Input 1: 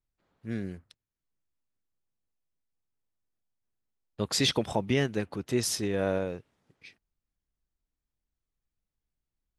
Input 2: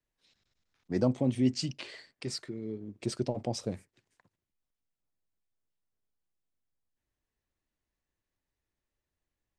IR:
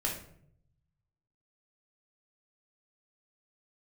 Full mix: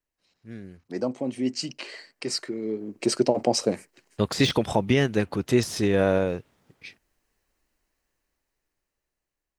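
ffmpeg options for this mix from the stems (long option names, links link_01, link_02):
-filter_complex "[0:a]deesser=0.75,alimiter=limit=-16dB:level=0:latency=1:release=259,volume=-6.5dB[link_01];[1:a]highpass=270,bandreject=frequency=3500:width=6.4,volume=0dB[link_02];[link_01][link_02]amix=inputs=2:normalize=0,dynaudnorm=framelen=660:gausssize=7:maxgain=14.5dB"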